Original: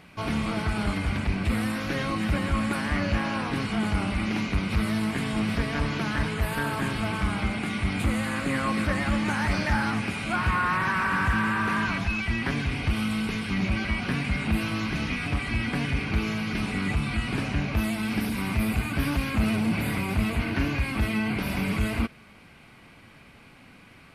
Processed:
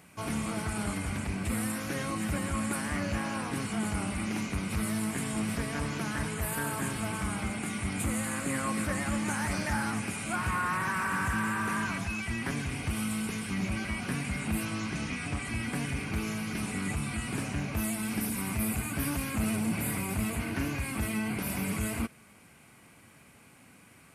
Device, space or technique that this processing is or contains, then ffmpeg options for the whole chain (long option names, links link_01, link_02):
budget condenser microphone: -filter_complex "[0:a]asettb=1/sr,asplit=3[link_01][link_02][link_03];[link_01]atrim=end=14.654[link_04];[link_02]atrim=start=14.65:end=15.45,asetpts=PTS-STARTPTS,afade=type=in:duration=0.004:curve=qsin,afade=type=out:start_time=0.796:duration=0.004:curve=qsin,lowpass=frequency=9400:width=0.5412,lowpass=frequency=9400:width=1.3066[link_05];[link_03]atrim=start=15.446[link_06];[link_04][link_05]acrossfade=duration=0.004:curve1=hsin:curve2=qsin[link_07];[link_07][link_06]acrossfade=duration=0.004:curve1=qsin:curve2=hsin,highpass=70,highshelf=frequency=5700:width_type=q:width=1.5:gain=10.5,volume=-5dB"